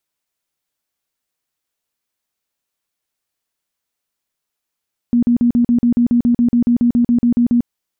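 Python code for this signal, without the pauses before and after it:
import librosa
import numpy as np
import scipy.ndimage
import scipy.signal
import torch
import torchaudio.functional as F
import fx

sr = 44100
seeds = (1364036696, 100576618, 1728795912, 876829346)

y = fx.tone_burst(sr, hz=239.0, cycles=23, every_s=0.14, bursts=18, level_db=-9.5)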